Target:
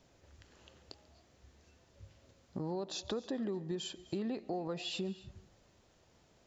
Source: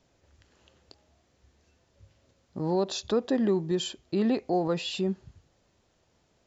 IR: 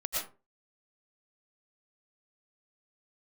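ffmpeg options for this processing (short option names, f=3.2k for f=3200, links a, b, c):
-filter_complex "[0:a]acompressor=threshold=-39dB:ratio=4,asplit=2[a][b];[1:a]atrim=start_sample=2205,adelay=140[c];[b][c]afir=irnorm=-1:irlink=0,volume=-22dB[d];[a][d]amix=inputs=2:normalize=0,volume=1.5dB"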